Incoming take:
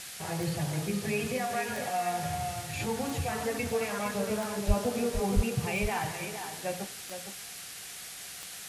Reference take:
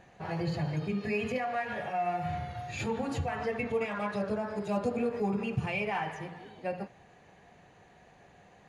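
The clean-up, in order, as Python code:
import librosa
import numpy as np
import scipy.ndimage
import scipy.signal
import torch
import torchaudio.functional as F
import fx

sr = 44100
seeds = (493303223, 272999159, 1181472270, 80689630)

y = fx.fix_declick_ar(x, sr, threshold=10.0)
y = fx.highpass(y, sr, hz=140.0, slope=24, at=(4.67, 4.79), fade=0.02)
y = fx.highpass(y, sr, hz=140.0, slope=24, at=(5.35, 5.47), fade=0.02)
y = fx.noise_reduce(y, sr, print_start_s=7.46, print_end_s=7.96, reduce_db=15.0)
y = fx.fix_echo_inverse(y, sr, delay_ms=462, level_db=-8.5)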